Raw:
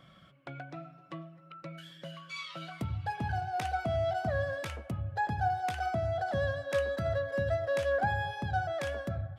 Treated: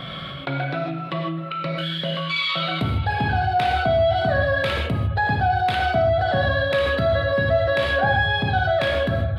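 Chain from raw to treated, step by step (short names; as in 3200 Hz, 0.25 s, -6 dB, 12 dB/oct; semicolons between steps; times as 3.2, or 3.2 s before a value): resonant high shelf 4900 Hz -8 dB, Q 3; non-linear reverb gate 0.18 s flat, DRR -0.5 dB; fast leveller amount 50%; gain +5.5 dB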